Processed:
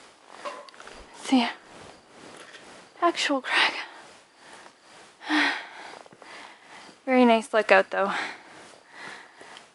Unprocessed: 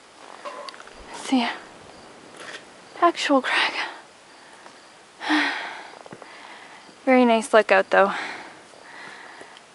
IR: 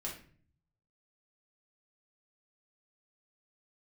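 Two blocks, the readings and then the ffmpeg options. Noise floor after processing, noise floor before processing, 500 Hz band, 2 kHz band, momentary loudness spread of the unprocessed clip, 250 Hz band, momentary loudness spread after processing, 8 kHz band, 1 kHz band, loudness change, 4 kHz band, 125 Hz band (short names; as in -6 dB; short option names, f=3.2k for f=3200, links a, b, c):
-57 dBFS, -49 dBFS, -4.0 dB, -2.0 dB, 22 LU, -2.5 dB, 22 LU, -2.5 dB, -4.0 dB, -2.5 dB, -1.0 dB, n/a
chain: -filter_complex "[0:a]asplit=2[a][b];[b]highpass=1.2k[c];[1:a]atrim=start_sample=2205[d];[c][d]afir=irnorm=-1:irlink=0,volume=-16dB[e];[a][e]amix=inputs=2:normalize=0,tremolo=f=2.2:d=0.73"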